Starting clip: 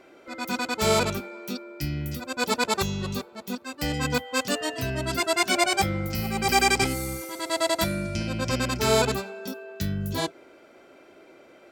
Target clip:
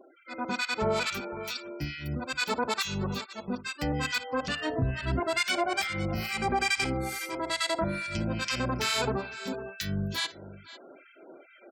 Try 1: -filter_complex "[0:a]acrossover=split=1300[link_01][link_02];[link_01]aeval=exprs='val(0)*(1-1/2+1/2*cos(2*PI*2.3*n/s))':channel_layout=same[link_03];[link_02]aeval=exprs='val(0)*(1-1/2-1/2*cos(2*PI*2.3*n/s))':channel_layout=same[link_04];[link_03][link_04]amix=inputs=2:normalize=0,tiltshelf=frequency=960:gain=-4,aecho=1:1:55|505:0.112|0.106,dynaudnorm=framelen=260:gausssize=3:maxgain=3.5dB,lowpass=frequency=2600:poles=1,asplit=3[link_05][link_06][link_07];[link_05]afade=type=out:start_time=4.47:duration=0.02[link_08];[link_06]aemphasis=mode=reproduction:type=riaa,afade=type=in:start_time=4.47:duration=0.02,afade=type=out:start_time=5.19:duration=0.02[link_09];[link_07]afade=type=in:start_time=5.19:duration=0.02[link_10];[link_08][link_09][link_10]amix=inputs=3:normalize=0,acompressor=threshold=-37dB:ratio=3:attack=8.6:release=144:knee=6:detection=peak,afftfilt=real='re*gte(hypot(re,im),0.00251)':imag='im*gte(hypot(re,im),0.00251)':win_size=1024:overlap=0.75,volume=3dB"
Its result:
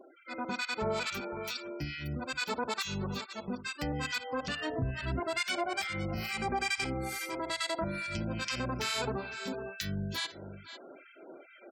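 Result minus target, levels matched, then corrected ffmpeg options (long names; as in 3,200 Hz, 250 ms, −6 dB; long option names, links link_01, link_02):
downward compressor: peak gain reduction +5 dB
-filter_complex "[0:a]acrossover=split=1300[link_01][link_02];[link_01]aeval=exprs='val(0)*(1-1/2+1/2*cos(2*PI*2.3*n/s))':channel_layout=same[link_03];[link_02]aeval=exprs='val(0)*(1-1/2-1/2*cos(2*PI*2.3*n/s))':channel_layout=same[link_04];[link_03][link_04]amix=inputs=2:normalize=0,tiltshelf=frequency=960:gain=-4,aecho=1:1:55|505:0.112|0.106,dynaudnorm=framelen=260:gausssize=3:maxgain=3.5dB,lowpass=frequency=2600:poles=1,asplit=3[link_05][link_06][link_07];[link_05]afade=type=out:start_time=4.47:duration=0.02[link_08];[link_06]aemphasis=mode=reproduction:type=riaa,afade=type=in:start_time=4.47:duration=0.02,afade=type=out:start_time=5.19:duration=0.02[link_09];[link_07]afade=type=in:start_time=5.19:duration=0.02[link_10];[link_08][link_09][link_10]amix=inputs=3:normalize=0,acompressor=threshold=-29.5dB:ratio=3:attack=8.6:release=144:knee=6:detection=peak,afftfilt=real='re*gte(hypot(re,im),0.00251)':imag='im*gte(hypot(re,im),0.00251)':win_size=1024:overlap=0.75,volume=3dB"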